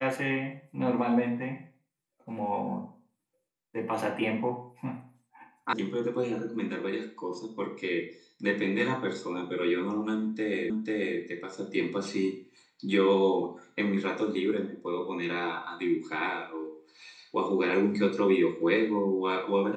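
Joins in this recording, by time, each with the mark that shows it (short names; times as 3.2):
5.73 sound cut off
10.7 repeat of the last 0.49 s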